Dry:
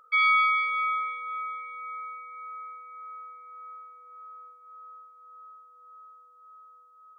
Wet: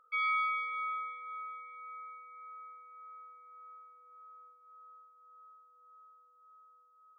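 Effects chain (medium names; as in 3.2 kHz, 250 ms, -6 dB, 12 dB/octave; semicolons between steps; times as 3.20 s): treble shelf 3.4 kHz -10.5 dB; trim -7.5 dB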